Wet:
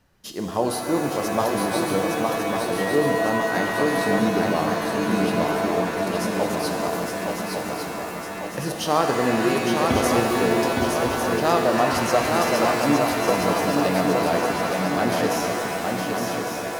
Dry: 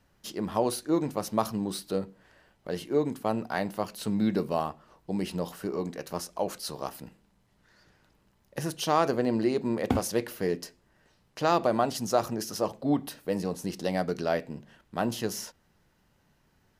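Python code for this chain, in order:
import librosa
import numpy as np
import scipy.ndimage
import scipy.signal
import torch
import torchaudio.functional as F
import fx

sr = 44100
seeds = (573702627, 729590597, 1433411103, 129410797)

y = fx.echo_swing(x, sr, ms=1152, ratio=3, feedback_pct=55, wet_db=-4.0)
y = fx.dmg_tone(y, sr, hz=1900.0, level_db=-33.0, at=(2.77, 4.18), fade=0.02)
y = fx.rev_shimmer(y, sr, seeds[0], rt60_s=2.9, semitones=7, shimmer_db=-2, drr_db=4.5)
y = y * librosa.db_to_amplitude(3.0)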